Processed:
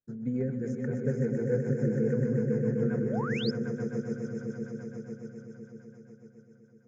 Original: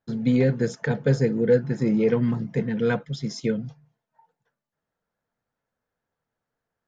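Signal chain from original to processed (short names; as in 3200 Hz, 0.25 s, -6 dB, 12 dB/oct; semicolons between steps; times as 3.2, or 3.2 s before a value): EQ curve 440 Hz 0 dB, 1000 Hz -9 dB, 1500 Hz -1 dB, 4000 Hz -28 dB, 6100 Hz -4 dB; swelling echo 0.126 s, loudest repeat 5, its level -6 dB; rotary speaker horn 7 Hz; painted sound rise, 3.02–3.51, 310–5500 Hz -29 dBFS; gain -9 dB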